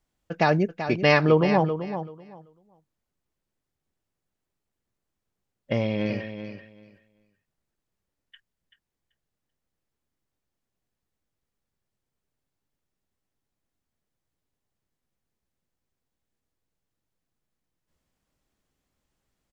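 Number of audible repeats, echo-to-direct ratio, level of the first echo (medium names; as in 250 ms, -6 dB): 2, -10.0 dB, -10.0 dB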